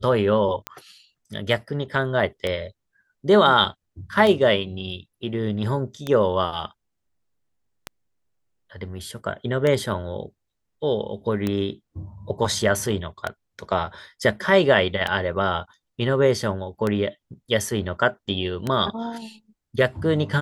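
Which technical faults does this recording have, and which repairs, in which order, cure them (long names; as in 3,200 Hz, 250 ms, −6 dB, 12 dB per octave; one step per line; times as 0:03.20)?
scratch tick 33 1/3 rpm −11 dBFS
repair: click removal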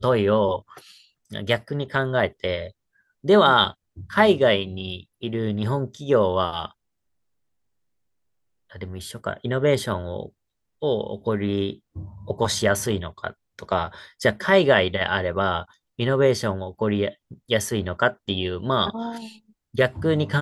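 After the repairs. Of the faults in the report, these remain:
none of them is left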